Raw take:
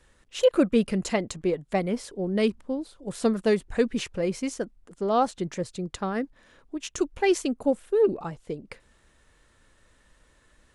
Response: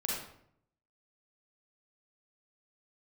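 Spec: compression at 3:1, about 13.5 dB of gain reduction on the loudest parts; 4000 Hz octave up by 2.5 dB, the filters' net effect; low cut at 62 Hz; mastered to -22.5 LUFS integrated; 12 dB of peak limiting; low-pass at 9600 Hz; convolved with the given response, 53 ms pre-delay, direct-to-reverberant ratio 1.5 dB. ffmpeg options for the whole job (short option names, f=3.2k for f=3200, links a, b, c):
-filter_complex "[0:a]highpass=62,lowpass=9.6k,equalizer=f=4k:t=o:g=3.5,acompressor=threshold=-35dB:ratio=3,alimiter=level_in=9dB:limit=-24dB:level=0:latency=1,volume=-9dB,asplit=2[a][b];[1:a]atrim=start_sample=2205,adelay=53[c];[b][c]afir=irnorm=-1:irlink=0,volume=-6dB[d];[a][d]amix=inputs=2:normalize=0,volume=17.5dB"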